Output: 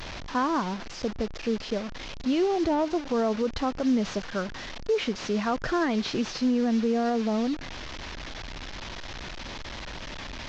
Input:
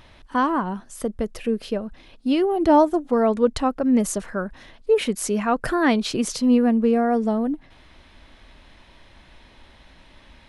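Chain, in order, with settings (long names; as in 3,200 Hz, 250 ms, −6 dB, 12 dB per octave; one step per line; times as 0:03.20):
linear delta modulator 32 kbit/s, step −28 dBFS
brickwall limiter −14 dBFS, peak gain reduction 8 dB
level −3.5 dB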